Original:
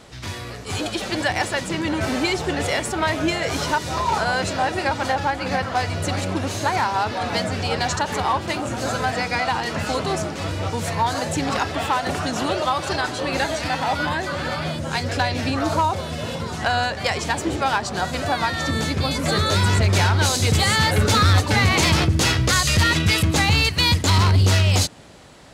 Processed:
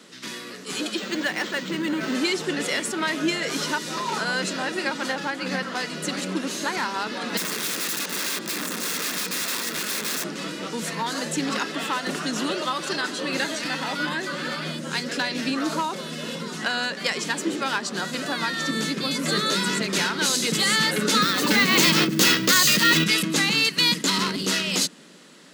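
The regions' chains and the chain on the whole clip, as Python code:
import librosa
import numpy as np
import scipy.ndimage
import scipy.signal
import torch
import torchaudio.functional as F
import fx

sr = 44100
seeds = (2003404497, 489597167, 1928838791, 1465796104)

y = fx.chain(x, sr, fx.lowpass(hz=12000.0, slope=12),
    fx.resample_linear(factor=4), at=(0.97, 2.15))
y = fx.chain(y, sr, fx.overflow_wrap(gain_db=21.0),
    fx.notch(hz=3000.0, q=12.0), at=(7.37, 10.24))
y = fx.chain(y, sr, fx.resample_bad(factor=2, down='none', up='hold'),
    fx.env_flatten(amount_pct=70), at=(21.22, 23.04))
y = scipy.signal.sosfilt(scipy.signal.butter(8, 170.0, 'highpass', fs=sr, output='sos'), y)
y = fx.peak_eq(y, sr, hz=750.0, db=-12.5, octaves=0.83)
y = fx.notch(y, sr, hz=2300.0, q=19.0)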